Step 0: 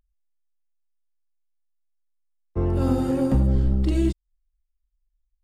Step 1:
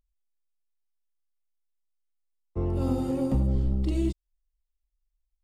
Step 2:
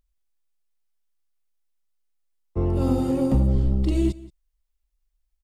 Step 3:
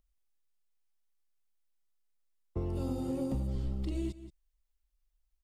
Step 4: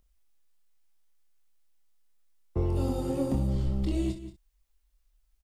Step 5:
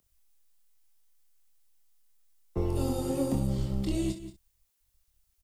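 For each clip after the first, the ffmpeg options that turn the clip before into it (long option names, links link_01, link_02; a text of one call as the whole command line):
ffmpeg -i in.wav -af "equalizer=frequency=1600:width=3.7:gain=-9.5,volume=-5dB" out.wav
ffmpeg -i in.wav -af "aecho=1:1:178:0.0944,volume=5dB" out.wav
ffmpeg -i in.wav -filter_complex "[0:a]acrossover=split=960|2900[link_01][link_02][link_03];[link_01]acompressor=threshold=-29dB:ratio=4[link_04];[link_02]acompressor=threshold=-57dB:ratio=4[link_05];[link_03]acompressor=threshold=-54dB:ratio=4[link_06];[link_04][link_05][link_06]amix=inputs=3:normalize=0,volume=-3.5dB" out.wav
ffmpeg -i in.wav -filter_complex "[0:a]asplit=2[link_01][link_02];[link_02]asoftclip=type=tanh:threshold=-32.5dB,volume=-6dB[link_03];[link_01][link_03]amix=inputs=2:normalize=0,aecho=1:1:25|62:0.531|0.282,volume=3dB" out.wav
ffmpeg -i in.wav -filter_complex "[0:a]highshelf=frequency=4900:gain=9,acrossover=split=110|930|3400[link_01][link_02][link_03][link_04];[link_01]aeval=exprs='max(val(0),0)':channel_layout=same[link_05];[link_05][link_02][link_03][link_04]amix=inputs=4:normalize=0" out.wav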